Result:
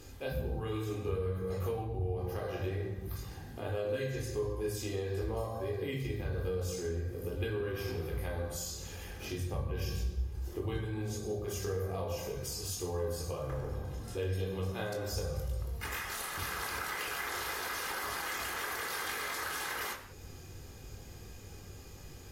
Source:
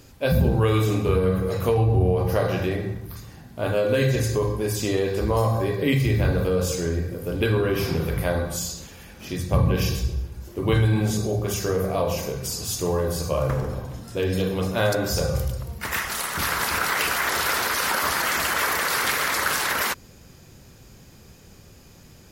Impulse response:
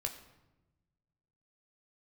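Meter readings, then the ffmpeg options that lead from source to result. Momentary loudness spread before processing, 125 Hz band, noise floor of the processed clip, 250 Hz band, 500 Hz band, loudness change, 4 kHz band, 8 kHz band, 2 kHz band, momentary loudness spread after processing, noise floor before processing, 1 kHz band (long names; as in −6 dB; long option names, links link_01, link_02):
9 LU, −13.5 dB, −49 dBFS, −15.5 dB, −12.5 dB, −13.5 dB, −13.0 dB, −12.5 dB, −13.5 dB, 9 LU, −49 dBFS, −13.5 dB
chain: -filter_complex "[0:a]acompressor=threshold=-37dB:ratio=3[link_01];[1:a]atrim=start_sample=2205,afade=type=out:start_time=0.2:duration=0.01,atrim=end_sample=9261,asetrate=31311,aresample=44100[link_02];[link_01][link_02]afir=irnorm=-1:irlink=0,volume=-4dB"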